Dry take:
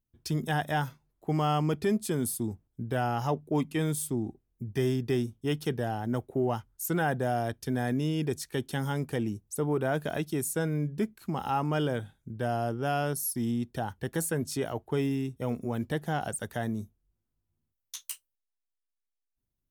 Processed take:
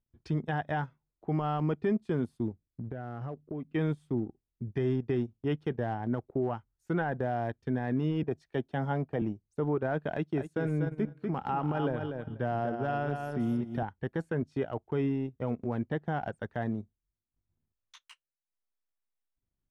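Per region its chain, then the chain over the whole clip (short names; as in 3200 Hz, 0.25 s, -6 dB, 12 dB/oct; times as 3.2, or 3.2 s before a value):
2.53–3.74 LPF 1300 Hz 6 dB/oct + bell 890 Hz -14.5 dB 0.32 oct + compressor 8:1, threshold -33 dBFS
8.23–9.22 bell 670 Hz +10.5 dB 0.42 oct + three-band expander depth 70%
10.12–13.83 HPF 65 Hz 24 dB/oct + feedback echo 0.243 s, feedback 23%, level -6 dB
whole clip: LPF 2100 Hz 12 dB/oct; limiter -21 dBFS; transient shaper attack 0 dB, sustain -12 dB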